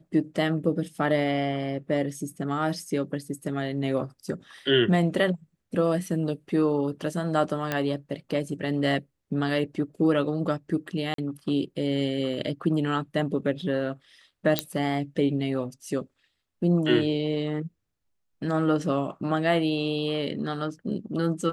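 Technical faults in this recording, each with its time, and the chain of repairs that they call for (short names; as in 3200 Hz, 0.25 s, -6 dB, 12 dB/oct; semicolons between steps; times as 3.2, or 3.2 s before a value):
7.72 pop -12 dBFS
11.14–11.18 gap 43 ms
14.59 pop -6 dBFS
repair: de-click; interpolate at 11.14, 43 ms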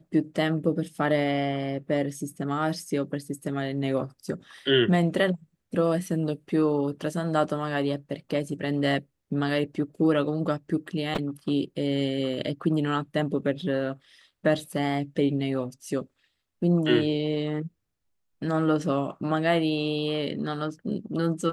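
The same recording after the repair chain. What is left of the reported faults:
none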